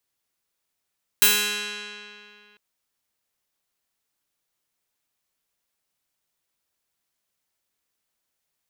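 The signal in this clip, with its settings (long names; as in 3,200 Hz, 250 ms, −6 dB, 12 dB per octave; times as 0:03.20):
Karplus-Strong string G#3, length 1.35 s, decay 2.53 s, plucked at 0.35, bright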